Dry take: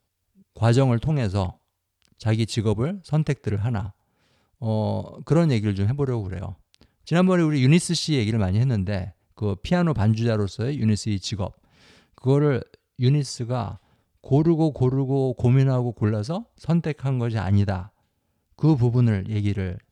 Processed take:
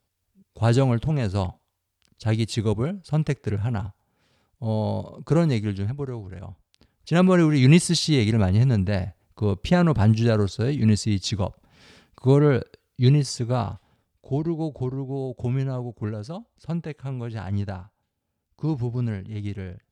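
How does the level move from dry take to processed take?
0:05.46 −1 dB
0:06.21 −8 dB
0:07.36 +2 dB
0:13.58 +2 dB
0:14.42 −7 dB

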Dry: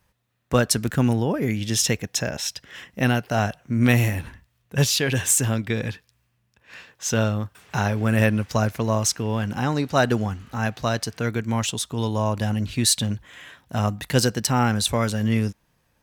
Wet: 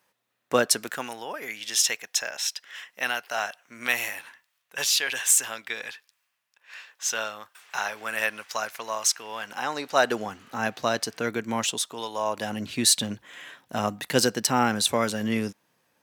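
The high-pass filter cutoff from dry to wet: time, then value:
0:00.63 330 Hz
0:01.10 950 Hz
0:09.27 950 Hz
0:10.61 270 Hz
0:11.68 270 Hz
0:12.09 710 Hz
0:12.65 240 Hz

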